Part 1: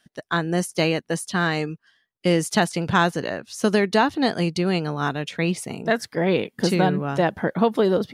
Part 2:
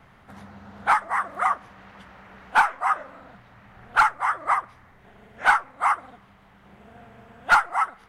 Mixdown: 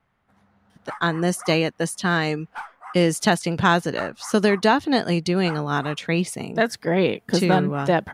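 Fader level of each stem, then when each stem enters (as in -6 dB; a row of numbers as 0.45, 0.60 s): +1.0, -16.5 dB; 0.70, 0.00 s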